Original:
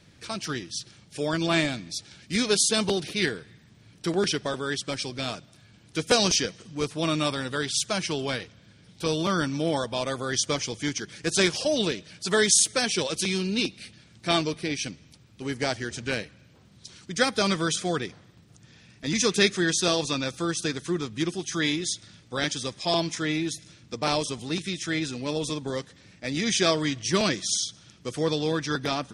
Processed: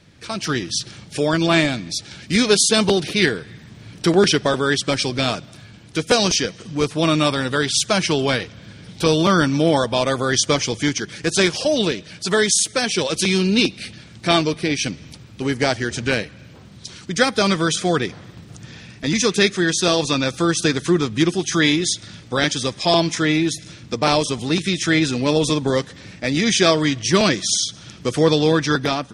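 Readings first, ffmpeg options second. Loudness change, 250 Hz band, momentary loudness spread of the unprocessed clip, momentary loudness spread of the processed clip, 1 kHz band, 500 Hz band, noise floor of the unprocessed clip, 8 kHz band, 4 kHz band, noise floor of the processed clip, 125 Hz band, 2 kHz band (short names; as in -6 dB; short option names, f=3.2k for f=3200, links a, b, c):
+7.5 dB, +9.0 dB, 13 LU, 11 LU, +8.5 dB, +8.5 dB, -56 dBFS, +5.0 dB, +7.0 dB, -43 dBFS, +9.5 dB, +7.5 dB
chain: -filter_complex "[0:a]dynaudnorm=f=140:g=7:m=11.5dB,highshelf=f=5.4k:g=-4.5,asplit=2[a][b];[b]acompressor=threshold=-29dB:ratio=6,volume=-1dB[c];[a][c]amix=inputs=2:normalize=0,volume=-1dB"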